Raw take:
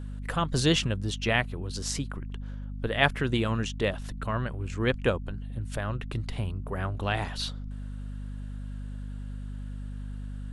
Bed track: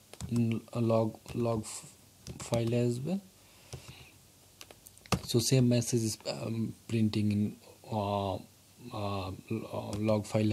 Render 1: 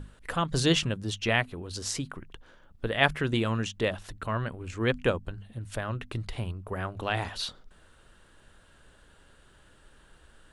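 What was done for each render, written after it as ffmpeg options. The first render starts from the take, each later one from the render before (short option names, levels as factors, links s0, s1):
-af "bandreject=f=50:t=h:w=6,bandreject=f=100:t=h:w=6,bandreject=f=150:t=h:w=6,bandreject=f=200:t=h:w=6,bandreject=f=250:t=h:w=6"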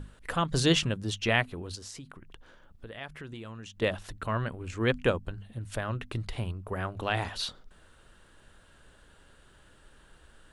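-filter_complex "[0:a]asettb=1/sr,asplit=3[s0][s1][s2];[s0]atrim=end=1.754[s3];[s1]atrim=start=1.75:end=3.82,asetpts=PTS-STARTPTS,afade=t=in:d=0.004:c=qsin,afade=t=out:st=2.066:d=0.004:c=qsin,acompressor=threshold=0.00501:ratio=2.5:attack=3.2:release=140:knee=1:detection=peak[s4];[s2]atrim=start=3.816[s5];[s3][s4]acrossfade=d=0.004:c1=hsin:c2=qsin[s6];[s6][s5]acrossfade=d=0.004:c1=qsin:c2=hsin"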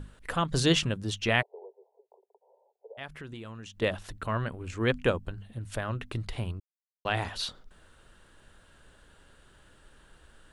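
-filter_complex "[0:a]asplit=3[s0][s1][s2];[s0]afade=t=out:st=1.41:d=0.02[s3];[s1]asuperpass=centerf=610:order=20:qfactor=1.1,afade=t=in:st=1.41:d=0.02,afade=t=out:st=2.97:d=0.02[s4];[s2]afade=t=in:st=2.97:d=0.02[s5];[s3][s4][s5]amix=inputs=3:normalize=0,asplit=3[s6][s7][s8];[s6]atrim=end=6.6,asetpts=PTS-STARTPTS,afade=t=out:st=6.596:d=0.004:c=hsin[s9];[s7]atrim=start=6.6:end=7.05,asetpts=PTS-STARTPTS,volume=0[s10];[s8]atrim=start=7.05,asetpts=PTS-STARTPTS,afade=t=in:d=0.004:c=hsin[s11];[s9][s10][s11]concat=n=3:v=0:a=1"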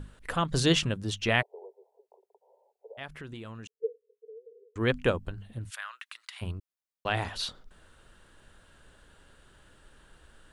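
-filter_complex "[0:a]asettb=1/sr,asplit=3[s0][s1][s2];[s0]atrim=end=3.674[s3];[s1]atrim=start=3.67:end=4.76,asetpts=PTS-STARTPTS,afade=t=in:d=0.004:c=qsin,afade=t=out:st=1.086:d=0.004:c=qsin,asuperpass=centerf=450:order=8:qfactor=6.2[s4];[s2]atrim=start=4.756[s5];[s3][s4]acrossfade=d=0.004:c1=hsin:c2=qsin[s6];[s6][s5]acrossfade=d=0.004:c1=qsin:c2=hsin,asplit=3[s7][s8][s9];[s7]afade=t=out:st=5.69:d=0.02[s10];[s8]highpass=f=1200:w=0.5412,highpass=f=1200:w=1.3066,afade=t=in:st=5.69:d=0.02,afade=t=out:st=6.41:d=0.02[s11];[s9]afade=t=in:st=6.41:d=0.02[s12];[s10][s11][s12]amix=inputs=3:normalize=0"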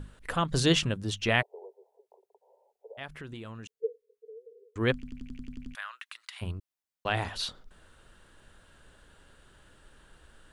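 -filter_complex "[0:a]asplit=10[s0][s1][s2][s3][s4][s5][s6][s7][s8][s9];[s0]atrim=end=5.032[s10];[s1]atrim=start=4.938:end=5.032[s11];[s2]atrim=start=4.938:end=5.032[s12];[s3]atrim=start=4.938:end=5.032[s13];[s4]atrim=start=4.938:end=5.032[s14];[s5]atrim=start=4.938:end=5.032[s15];[s6]atrim=start=4.938:end=5.032[s16];[s7]atrim=start=4.938:end=5.032[s17];[s8]atrim=start=4.938:end=5.032[s18];[s9]atrim=start=5.748[s19];[s10][s11]acrossfade=d=0.004:c1=hsin:c2=hsin[s20];[s20][s12]acrossfade=d=0.004:c1=hsin:c2=hsin[s21];[s21][s13]acrossfade=d=0.004:c1=hsin:c2=hsin[s22];[s22][s14]acrossfade=d=0.004:c1=hsin:c2=hsin[s23];[s23][s15]acrossfade=d=0.004:c1=hsin:c2=hsin[s24];[s24][s16]acrossfade=d=0.004:c1=hsin:c2=hsin[s25];[s25][s17]acrossfade=d=0.004:c1=hsin:c2=hsin[s26];[s26][s18]acrossfade=d=0.004:c1=hsin:c2=hsin[s27];[s27][s19]acrossfade=d=0.004:c1=hsin:c2=hsin"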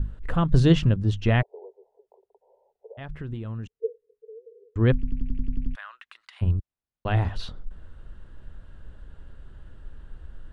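-af "aemphasis=mode=reproduction:type=riaa,bandreject=f=2300:w=25"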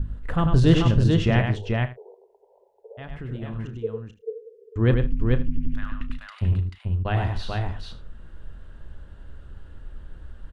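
-filter_complex "[0:a]asplit=2[s0][s1];[s1]adelay=32,volume=0.224[s2];[s0][s2]amix=inputs=2:normalize=0,asplit=2[s3][s4];[s4]aecho=0:1:97|153|437|515:0.531|0.106|0.668|0.112[s5];[s3][s5]amix=inputs=2:normalize=0"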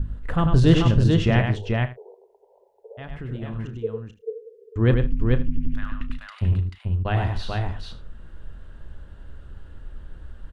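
-af "volume=1.12"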